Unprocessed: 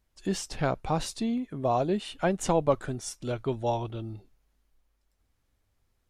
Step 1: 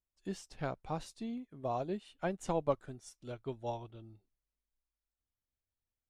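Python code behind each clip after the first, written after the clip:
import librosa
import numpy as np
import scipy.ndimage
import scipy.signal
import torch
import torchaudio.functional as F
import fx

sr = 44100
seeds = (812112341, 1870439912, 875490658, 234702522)

y = fx.upward_expand(x, sr, threshold_db=-48.0, expansion=1.5)
y = y * 10.0 ** (-7.0 / 20.0)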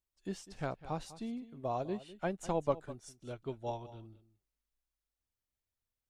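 y = x + 10.0 ** (-16.5 / 20.0) * np.pad(x, (int(201 * sr / 1000.0), 0))[:len(x)]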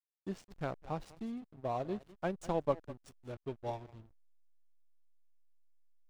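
y = fx.backlash(x, sr, play_db=-43.0)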